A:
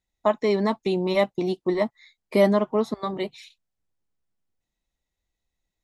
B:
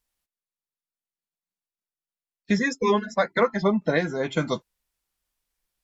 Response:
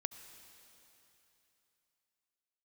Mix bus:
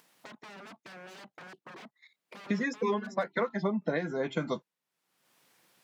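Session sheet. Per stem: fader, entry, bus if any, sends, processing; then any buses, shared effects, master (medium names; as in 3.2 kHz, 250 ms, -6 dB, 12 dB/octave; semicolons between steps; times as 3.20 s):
-11.5 dB, 0.00 s, no send, level held to a coarse grid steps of 13 dB; wavefolder -33.5 dBFS
-3.5 dB, 0.00 s, no send, compression 5:1, threshold -22 dBFS, peak gain reduction 7.5 dB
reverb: none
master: high-pass 140 Hz 24 dB/octave; upward compressor, threshold -41 dBFS; treble shelf 4.1 kHz -9.5 dB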